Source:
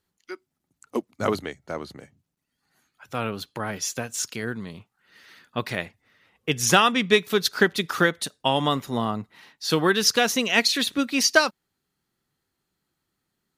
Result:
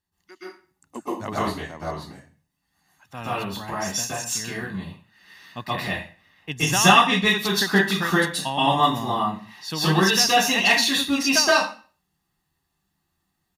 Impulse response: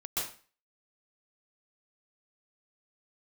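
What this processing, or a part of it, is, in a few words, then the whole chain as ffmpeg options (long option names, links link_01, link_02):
microphone above a desk: -filter_complex "[0:a]aecho=1:1:1.1:0.54[link_01];[1:a]atrim=start_sample=2205[link_02];[link_01][link_02]afir=irnorm=-1:irlink=0,volume=-2dB"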